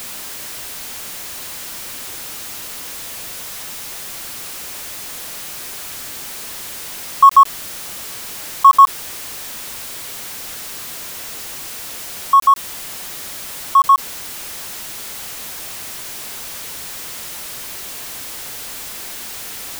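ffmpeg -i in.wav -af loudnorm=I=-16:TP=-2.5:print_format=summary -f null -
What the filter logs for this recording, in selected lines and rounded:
Input Integrated:    -21.0 LUFS
Input True Peak:      -1.6 dBTP
Input LRA:            12.8 LU
Input Threshold:     -31.0 LUFS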